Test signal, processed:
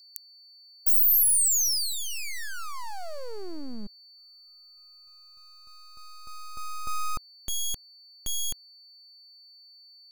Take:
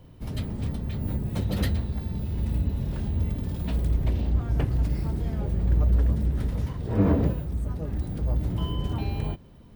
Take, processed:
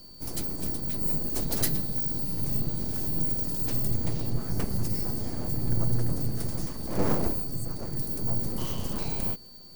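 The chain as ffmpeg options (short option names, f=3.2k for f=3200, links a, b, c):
-af "aeval=exprs='abs(val(0))':c=same,aeval=exprs='val(0)+0.00141*sin(2*PI*4500*n/s)':c=same,aexciter=amount=6.7:drive=4.1:freq=4.8k,volume=-2dB"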